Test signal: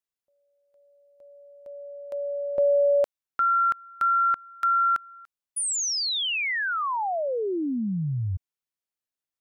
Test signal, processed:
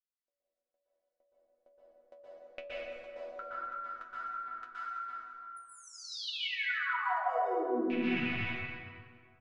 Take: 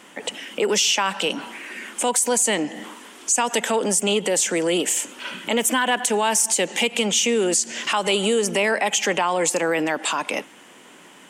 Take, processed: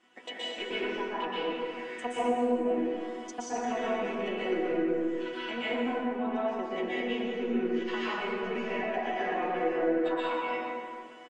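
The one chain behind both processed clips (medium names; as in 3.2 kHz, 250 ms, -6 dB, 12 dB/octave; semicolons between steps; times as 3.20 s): rattle on loud lows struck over -32 dBFS, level -13 dBFS; chord resonator B3 sus4, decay 0.25 s; low-pass that closes with the level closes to 400 Hz, closed at -31.5 dBFS; treble shelf 11 kHz +9 dB; transient shaper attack +6 dB, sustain 0 dB; distance through air 130 m; de-hum 72.35 Hz, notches 17; speakerphone echo 220 ms, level -14 dB; plate-style reverb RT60 2 s, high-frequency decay 0.65×, pre-delay 110 ms, DRR -9.5 dB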